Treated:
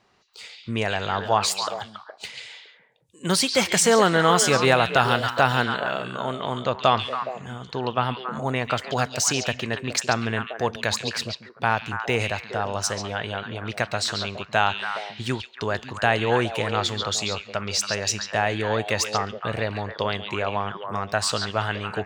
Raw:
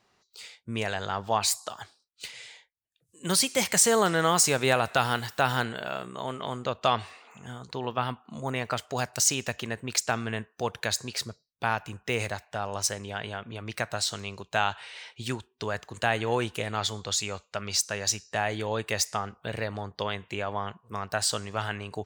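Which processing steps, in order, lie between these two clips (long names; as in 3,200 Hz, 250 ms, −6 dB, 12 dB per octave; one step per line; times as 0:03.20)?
high-shelf EQ 7,800 Hz −12 dB
echo through a band-pass that steps 139 ms, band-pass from 3,500 Hz, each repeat −1.4 octaves, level −2.5 dB
level +5.5 dB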